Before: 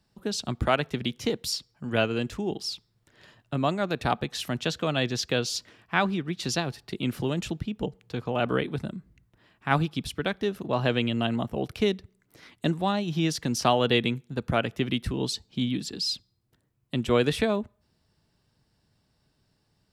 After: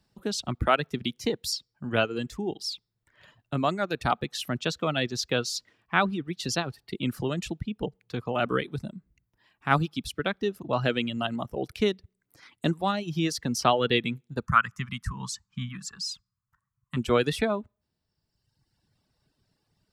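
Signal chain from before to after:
dynamic equaliser 1,300 Hz, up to +5 dB, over −48 dBFS, Q 4.9
reverb reduction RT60 1.3 s
0:14.46–0:16.97: drawn EQ curve 190 Hz 0 dB, 330 Hz −24 dB, 670 Hz −18 dB, 1,100 Hz +12 dB, 3,900 Hz −11 dB, 6,700 Hz +4 dB, 12,000 Hz −6 dB

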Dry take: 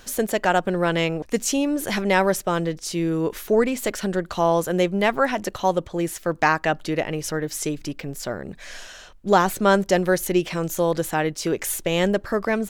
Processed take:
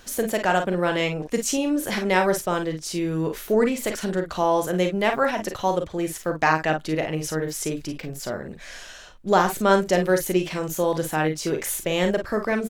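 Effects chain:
ambience of single reflections 38 ms −8.5 dB, 51 ms −9 dB
level −2 dB

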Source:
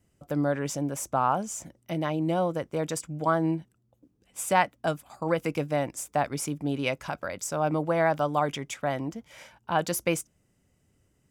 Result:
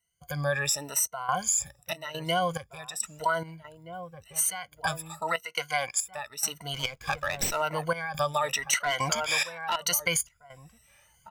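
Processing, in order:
rippled gain that drifts along the octave scale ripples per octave 1.9, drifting +0.91 Hz, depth 23 dB
automatic gain control gain up to 5 dB
guitar amp tone stack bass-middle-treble 10-0-10
slap from a distant wall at 270 metres, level −14 dB
brickwall limiter −18 dBFS, peak gain reduction 8 dB
0:05.43–0:06.00: meter weighting curve A
0:08.73–0:09.76: mid-hump overdrive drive 21 dB, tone 6,600 Hz, clips at −8.5 dBFS
gate pattern ".xxxx.xxx.xx..xx" 70 BPM −12 dB
downward compressor, threshold −27 dBFS, peak gain reduction 6.5 dB
0:06.74–0:07.62: windowed peak hold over 3 samples
level +5 dB

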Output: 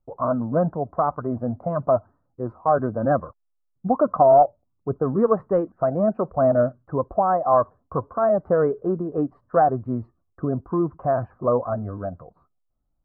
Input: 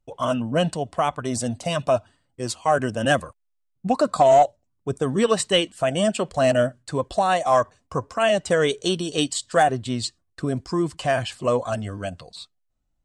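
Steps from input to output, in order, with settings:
elliptic low-pass filter 1,300 Hz, stop band 60 dB
level +1 dB

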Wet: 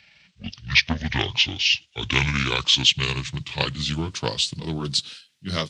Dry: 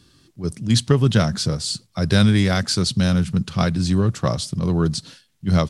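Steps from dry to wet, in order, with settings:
pitch glide at a constant tempo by −11.5 semitones ending unshifted
meter weighting curve D
highs frequency-modulated by the lows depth 0.29 ms
level −3.5 dB

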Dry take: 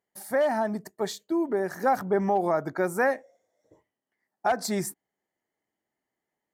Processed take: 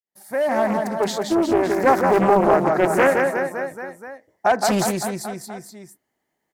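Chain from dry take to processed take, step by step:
fade in at the beginning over 0.72 s
reverse bouncing-ball delay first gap 170 ms, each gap 1.1×, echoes 5
highs frequency-modulated by the lows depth 0.49 ms
level +7 dB

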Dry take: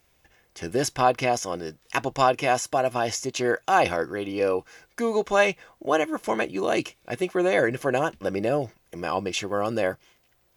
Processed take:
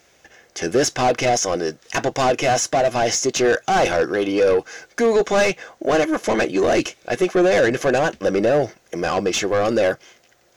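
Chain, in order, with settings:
mid-hump overdrive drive 25 dB, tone 1,400 Hz, clips at −5.5 dBFS
graphic EQ with 15 bands 1,000 Hz −8 dB, 2,500 Hz −3 dB, 6,300 Hz +9 dB

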